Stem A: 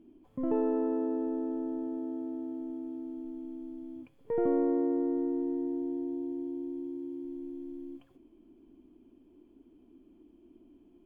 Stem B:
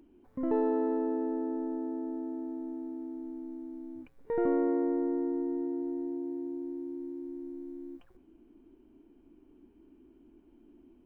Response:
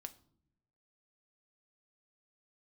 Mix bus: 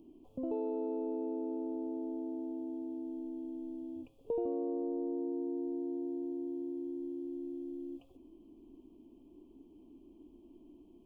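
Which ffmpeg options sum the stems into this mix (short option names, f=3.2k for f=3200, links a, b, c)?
-filter_complex "[0:a]acompressor=threshold=-40dB:ratio=6,volume=0dB[a];[1:a]acompressor=threshold=-30dB:ratio=6,volume=-1,volume=-4.5dB[b];[a][b]amix=inputs=2:normalize=0,asuperstop=centerf=1700:order=8:qfactor=1.2"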